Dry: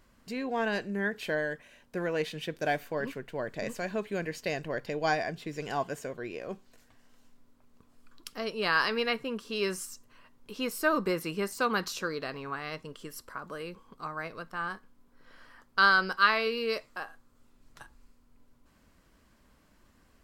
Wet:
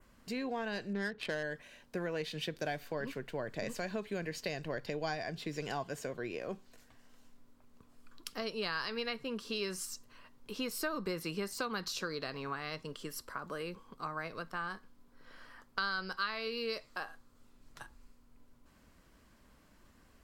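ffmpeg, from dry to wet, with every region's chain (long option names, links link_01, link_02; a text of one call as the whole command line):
ffmpeg -i in.wav -filter_complex "[0:a]asettb=1/sr,asplit=3[link_01][link_02][link_03];[link_01]atrim=end=0.934[link_04];[link_02]atrim=start=0.93:end=1.43,asetpts=PTS-STARTPTS,afade=type=in:duration=0.004:curve=qsin,afade=type=out:start_time=0.496:duration=0.004:curve=qsin,highshelf=frequency=2900:gain=7,adynamicsmooth=sensitivity=5:basefreq=1100[link_05];[link_03]atrim=start=1.426[link_06];[link_04][link_05]acrossfade=duration=0.004:curve1=hsin:curve2=qsin[link_07];[link_07][link_06]acrossfade=duration=0.004:curve1=qsin:curve2=hsin,adynamicequalizer=threshold=0.00316:dfrequency=4400:dqfactor=1.7:tfrequency=4400:tqfactor=1.7:attack=5:release=100:ratio=0.375:range=3:mode=boostabove:tftype=bell,acrossover=split=130[link_08][link_09];[link_09]acompressor=threshold=-35dB:ratio=4[link_10];[link_08][link_10]amix=inputs=2:normalize=0" out.wav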